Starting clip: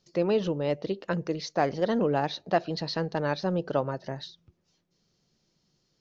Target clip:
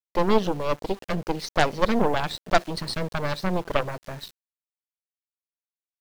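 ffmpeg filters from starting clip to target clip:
ffmpeg -i in.wav -af "aeval=exprs='0.299*(cos(1*acos(clip(val(0)/0.299,-1,1)))-cos(1*PI/2))+0.0188*(cos(5*acos(clip(val(0)/0.299,-1,1)))-cos(5*PI/2))+0.15*(cos(6*acos(clip(val(0)/0.299,-1,1)))-cos(6*PI/2))+0.0119*(cos(7*acos(clip(val(0)/0.299,-1,1)))-cos(7*PI/2))+0.0473*(cos(8*acos(clip(val(0)/0.299,-1,1)))-cos(8*PI/2))':channel_layout=same,aeval=exprs='val(0)*gte(abs(val(0)),0.0075)':channel_layout=same,volume=2dB" out.wav

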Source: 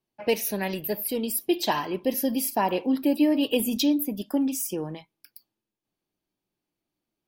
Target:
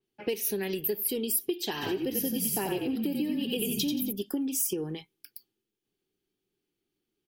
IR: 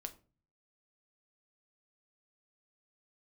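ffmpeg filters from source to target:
-filter_complex "[0:a]equalizer=frequency=400:width_type=o:width=0.33:gain=11,equalizer=frequency=630:width_type=o:width=0.33:gain=-12,equalizer=frequency=1000:width_type=o:width=0.33:gain=-10,equalizer=frequency=3150:width_type=o:width=0.33:gain=5,asplit=3[link_01][link_02][link_03];[link_01]afade=type=out:start_time=1.81:duration=0.02[link_04];[link_02]asplit=6[link_05][link_06][link_07][link_08][link_09][link_10];[link_06]adelay=89,afreqshift=-41,volume=-3.5dB[link_11];[link_07]adelay=178,afreqshift=-82,volume=-12.1dB[link_12];[link_08]adelay=267,afreqshift=-123,volume=-20.8dB[link_13];[link_09]adelay=356,afreqshift=-164,volume=-29.4dB[link_14];[link_10]adelay=445,afreqshift=-205,volume=-38dB[link_15];[link_05][link_11][link_12][link_13][link_14][link_15]amix=inputs=6:normalize=0,afade=type=in:start_time=1.81:duration=0.02,afade=type=out:start_time=4.11:duration=0.02[link_16];[link_03]afade=type=in:start_time=4.11:duration=0.02[link_17];[link_04][link_16][link_17]amix=inputs=3:normalize=0,acompressor=threshold=-28dB:ratio=6,adynamicequalizer=threshold=0.00282:dfrequency=5100:dqfactor=0.7:tfrequency=5100:tqfactor=0.7:attack=5:release=100:ratio=0.375:range=2.5:mode=boostabove:tftype=highshelf"

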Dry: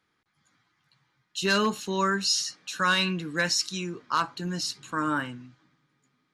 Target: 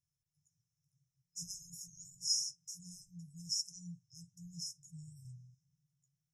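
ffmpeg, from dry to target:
ffmpeg -i in.wav -filter_complex "[0:a]asettb=1/sr,asplit=3[link_01][link_02][link_03];[link_01]atrim=end=2.784[link_04];[link_02]atrim=start=2.78:end=5.25,asetpts=PTS-STARTPTS,afade=type=in:duration=0.004:curve=qsin,afade=type=out:start_time=2.466:duration=0.004:curve=qsin,flanger=delay=4.9:depth=5.6:regen=33:speed=1:shape=sinusoidal[link_05];[link_03]atrim=start=5.246[link_06];[link_04][link_05]acrossfade=duration=0.004:curve1=hsin:curve2=qsin[link_07];[link_07][link_06]acrossfade=duration=0.004:curve1=qsin:curve2=hsin,afftfilt=real='re*(1-between(b*sr/4096,180,5100))':imag='im*(1-between(b*sr/4096,180,5100))':win_size=4096:overlap=0.75,volume=-6dB" out.wav

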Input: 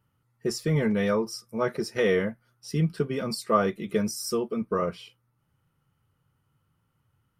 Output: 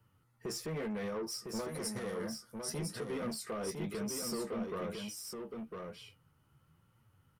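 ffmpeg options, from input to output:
ffmpeg -i in.wav -filter_complex "[0:a]flanger=delay=8.5:depth=7:regen=41:speed=1:shape=triangular,acrossover=split=230|790|2400|5100[link_01][link_02][link_03][link_04][link_05];[link_01]acompressor=threshold=-42dB:ratio=4[link_06];[link_02]acompressor=threshold=-30dB:ratio=4[link_07];[link_03]acompressor=threshold=-43dB:ratio=4[link_08];[link_04]acompressor=threshold=-58dB:ratio=4[link_09];[link_05]acompressor=threshold=-42dB:ratio=4[link_10];[link_06][link_07][link_08][link_09][link_10]amix=inputs=5:normalize=0,alimiter=level_in=7.5dB:limit=-24dB:level=0:latency=1:release=95,volume=-7.5dB,asoftclip=type=tanh:threshold=-39.5dB,asettb=1/sr,asplit=3[link_11][link_12][link_13];[link_11]atrim=end=1.614[link_14];[link_12]atrim=start=1.61:end=2.7,asetpts=PTS-STARTPTS,afade=type=in:duration=0.004:curve=qsin,afade=type=out:start_time=1.086:duration=0.004:curve=qsin,equalizer=frequency=400:width_type=o:width=0.67:gain=-5,equalizer=frequency=2500:width_type=o:width=0.67:gain=-9,equalizer=frequency=10000:width_type=o:width=0.67:gain=12[link_15];[link_13]atrim=start=2.696[link_16];[link_14][link_15]acrossfade=duration=0.004:curve1=hsin:curve2=qsin[link_17];[link_17][link_16]acrossfade=duration=0.004:curve1=qsin:curve2=hsin,asplit=2[link_18][link_19];[link_19]aecho=0:1:1005:0.562[link_20];[link_18][link_20]amix=inputs=2:normalize=0,volume=5.5dB" out.wav

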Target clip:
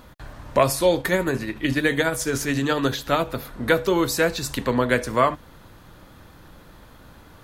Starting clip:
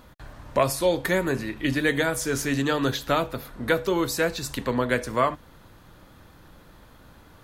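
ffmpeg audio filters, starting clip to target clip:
ffmpeg -i in.wav -filter_complex "[0:a]asplit=3[link_01][link_02][link_03];[link_01]afade=type=out:start_time=0.98:duration=0.02[link_04];[link_02]tremolo=f=14:d=0.39,afade=type=in:start_time=0.98:duration=0.02,afade=type=out:start_time=3.28:duration=0.02[link_05];[link_03]afade=type=in:start_time=3.28:duration=0.02[link_06];[link_04][link_05][link_06]amix=inputs=3:normalize=0,volume=3.5dB" out.wav

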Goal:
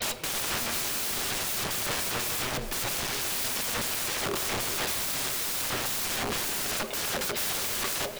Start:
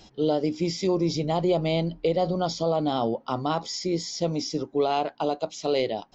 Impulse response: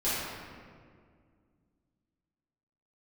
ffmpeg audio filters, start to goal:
-filter_complex "[0:a]agate=range=-33dB:threshold=-51dB:ratio=3:detection=peak,lowshelf=frequency=510:width_type=q:width=3:gain=-8,bandreject=frequency=60:width_type=h:width=6,bandreject=frequency=120:width_type=h:width=6,bandreject=frequency=180:width_type=h:width=6,bandreject=frequency=240:width_type=h:width=6,bandreject=frequency=300:width_type=h:width=6,bandreject=frequency=360:width_type=h:width=6,bandreject=frequency=420:width_type=h:width=6,bandreject=frequency=480:width_type=h:width=6,bandreject=frequency=540:width_type=h:width=6,aecho=1:1:6:0.62,acompressor=threshold=-35dB:ratio=3,flanger=delay=0.8:depth=7.3:regen=19:speed=1.6:shape=triangular,aeval=exprs='0.0596*sin(PI/2*7.94*val(0)/0.0596)':channel_layout=same,asetrate=33075,aresample=44100,aeval=exprs='(mod(35.5*val(0)+1,2)-1)/35.5':channel_layout=same,aecho=1:1:418:0.211,asplit=2[link_01][link_02];[1:a]atrim=start_sample=2205[link_03];[link_02][link_03]afir=irnorm=-1:irlink=0,volume=-20dB[link_04];[link_01][link_04]amix=inputs=2:normalize=0,volume=5.5dB"

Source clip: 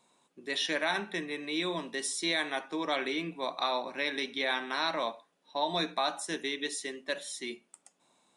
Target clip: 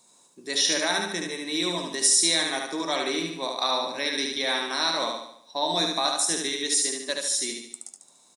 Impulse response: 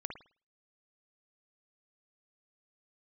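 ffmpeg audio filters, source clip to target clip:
-af "highshelf=frequency=3900:width_type=q:width=1.5:gain=10,aecho=1:1:73|146|219|292|365|438:0.668|0.321|0.154|0.0739|0.0355|0.017,volume=3dB"

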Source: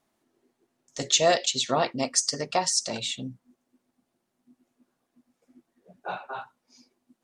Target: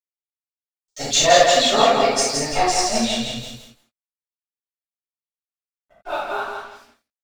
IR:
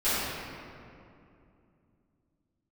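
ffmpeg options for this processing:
-filter_complex "[0:a]aphaser=in_gain=1:out_gain=1:delay=5:decay=0.72:speed=0.87:type=triangular,aecho=1:1:167|334|501|668|835:0.631|0.259|0.106|0.0435|0.0178,asplit=3[link_01][link_02][link_03];[link_01]afade=type=out:start_time=2.48:duration=0.02[link_04];[link_02]asubboost=boost=10.5:cutoff=72,afade=type=in:start_time=2.48:duration=0.02,afade=type=out:start_time=6.08:duration=0.02[link_05];[link_03]afade=type=in:start_time=6.08:duration=0.02[link_06];[link_04][link_05][link_06]amix=inputs=3:normalize=0,aeval=exprs='sgn(val(0))*max(abs(val(0))-0.00447,0)':channel_layout=same[link_07];[1:a]atrim=start_sample=2205,atrim=end_sample=4410[link_08];[link_07][link_08]afir=irnorm=-1:irlink=0,adynamicequalizer=threshold=0.0398:dfrequency=3800:dqfactor=0.7:tfrequency=3800:tqfactor=0.7:attack=5:release=100:ratio=0.375:range=3.5:mode=cutabove:tftype=highshelf,volume=-3dB"

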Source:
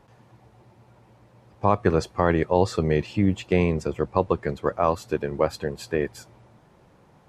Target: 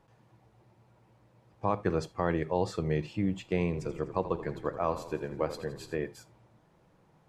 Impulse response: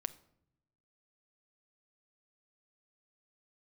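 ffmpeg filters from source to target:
-filter_complex "[0:a]asettb=1/sr,asplit=3[link_01][link_02][link_03];[link_01]atrim=end=3.654[link_04];[link_02]atrim=start=3.65:end=5.96,asetpts=PTS-STARTPTS,afade=type=in:duration=0.004:curve=qsin,afade=type=out:start_time=2.306:duration=0.004:curve=qsin,asplit=8[link_05][link_06][link_07][link_08][link_09][link_10][link_11][link_12];[link_06]adelay=83,afreqshift=-30,volume=-12.5dB[link_13];[link_07]adelay=166,afreqshift=-60,volume=-17.1dB[link_14];[link_08]adelay=249,afreqshift=-90,volume=-21.7dB[link_15];[link_09]adelay=332,afreqshift=-120,volume=-26.2dB[link_16];[link_10]adelay=415,afreqshift=-150,volume=-30.8dB[link_17];[link_11]adelay=498,afreqshift=-180,volume=-35.4dB[link_18];[link_12]adelay=581,afreqshift=-210,volume=-40dB[link_19];[link_05][link_13][link_14][link_15][link_16][link_17][link_18][link_19]amix=inputs=8:normalize=0,atrim=end_sample=101871[link_20];[link_03]atrim=start=5.956[link_21];[link_04][link_20]acrossfade=duration=0.004:curve1=hsin:curve2=qsin[link_22];[link_22][link_21]acrossfade=duration=0.004:curve1=qsin:curve2=hsin[link_23];[1:a]atrim=start_sample=2205,atrim=end_sample=3969[link_24];[link_23][link_24]afir=irnorm=-1:irlink=0,volume=-7.5dB"

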